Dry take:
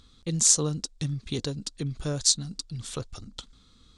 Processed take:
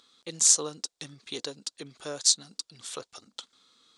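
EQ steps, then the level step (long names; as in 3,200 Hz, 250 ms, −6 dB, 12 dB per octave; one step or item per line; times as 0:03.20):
high-pass filter 470 Hz 12 dB per octave
0.0 dB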